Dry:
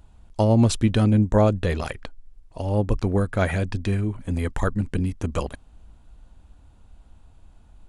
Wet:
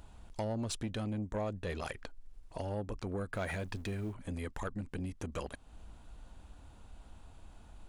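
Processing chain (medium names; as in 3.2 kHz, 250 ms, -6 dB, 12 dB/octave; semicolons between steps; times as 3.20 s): 3.33–4.14 s: companding laws mixed up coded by mu; in parallel at -2.5 dB: peak limiter -16 dBFS, peak gain reduction 8.5 dB; on the sum: compression 2.5:1, threshold -34 dBFS, peak gain reduction 15.5 dB; saturation -24 dBFS, distortion -18 dB; bass shelf 230 Hz -6.5 dB; trim -2 dB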